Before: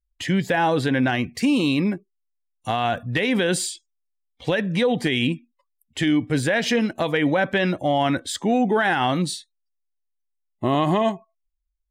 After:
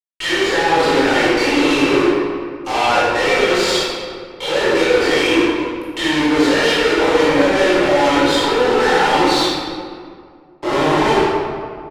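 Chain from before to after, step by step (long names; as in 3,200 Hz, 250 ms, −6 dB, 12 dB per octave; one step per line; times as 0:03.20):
running median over 5 samples
Butterworth high-pass 270 Hz 96 dB per octave
mains-hum notches 50/100/150/200/250/300/350/400 Hz
comb filter 2.2 ms, depth 79%
brickwall limiter −18.5 dBFS, peak gain reduction 12.5 dB
reversed playback
downward compressor 5 to 1, threshold −38 dBFS, peak gain reduction 14.5 dB
reversed playback
fuzz pedal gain 62 dB, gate −57 dBFS
high-frequency loss of the air 62 metres
convolution reverb RT60 2.1 s, pre-delay 16 ms, DRR −10 dB
level −10 dB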